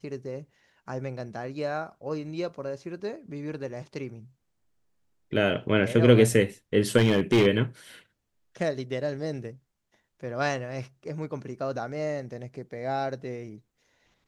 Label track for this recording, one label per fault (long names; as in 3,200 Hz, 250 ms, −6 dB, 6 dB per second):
6.970000	7.470000	clipping −15.5 dBFS